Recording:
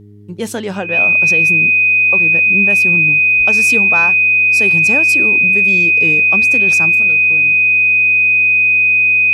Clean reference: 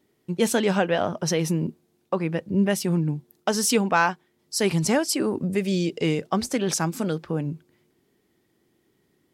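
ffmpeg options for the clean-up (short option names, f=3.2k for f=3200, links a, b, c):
-filter_complex "[0:a]bandreject=f=103:t=h:w=4,bandreject=f=206:t=h:w=4,bandreject=f=309:t=h:w=4,bandreject=f=412:t=h:w=4,bandreject=f=2.5k:w=30,asplit=3[a][b][c];[a]afade=t=out:st=3.37:d=0.02[d];[b]highpass=f=140:w=0.5412,highpass=f=140:w=1.3066,afade=t=in:st=3.37:d=0.02,afade=t=out:st=3.49:d=0.02[e];[c]afade=t=in:st=3.49:d=0.02[f];[d][e][f]amix=inputs=3:normalize=0,asetnsamples=n=441:p=0,asendcmd='6.95 volume volume 8dB',volume=0dB"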